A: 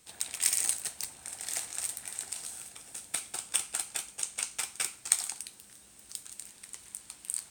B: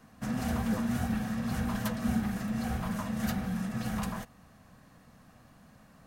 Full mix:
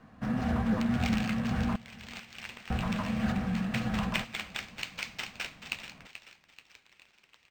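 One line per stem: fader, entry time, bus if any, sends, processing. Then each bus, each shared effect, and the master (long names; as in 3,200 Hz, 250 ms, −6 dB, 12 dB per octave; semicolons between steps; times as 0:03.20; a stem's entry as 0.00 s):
0:02.25 −9 dB → 0:03.01 −2 dB → 0:05.35 −2 dB → 0:06.13 −15 dB, 0.60 s, no send, echo send −12 dB, no processing
+2.0 dB, 0.00 s, muted 0:01.76–0:02.70, no send, echo send −21.5 dB, low-pass filter 4,400 Hz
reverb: not used
echo: repeating echo 433 ms, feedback 44%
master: linearly interpolated sample-rate reduction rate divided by 4×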